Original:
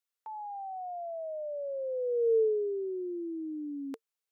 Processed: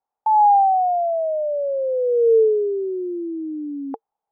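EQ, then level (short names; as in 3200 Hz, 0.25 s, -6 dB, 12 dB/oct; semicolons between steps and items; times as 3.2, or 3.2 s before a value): synth low-pass 830 Hz, resonance Q 9.4; +8.0 dB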